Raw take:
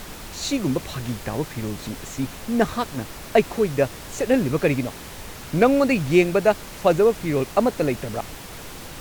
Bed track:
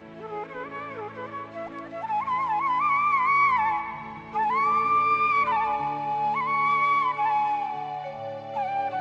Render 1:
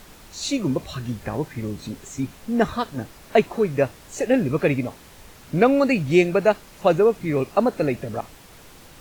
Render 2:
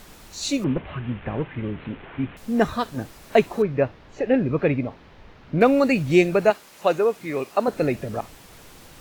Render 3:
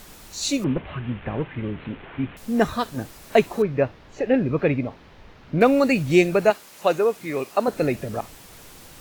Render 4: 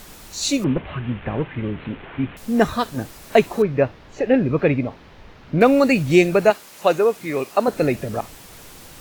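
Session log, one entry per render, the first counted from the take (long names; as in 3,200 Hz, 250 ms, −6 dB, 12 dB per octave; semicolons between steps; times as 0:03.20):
noise reduction from a noise print 9 dB
0:00.64–0:02.37: linear delta modulator 16 kbit/s, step −36 dBFS; 0:03.62–0:05.61: high-frequency loss of the air 270 metres; 0:06.50–0:07.68: high-pass filter 480 Hz 6 dB per octave
high-shelf EQ 5,500 Hz +5 dB
level +3 dB; brickwall limiter −3 dBFS, peak gain reduction 1 dB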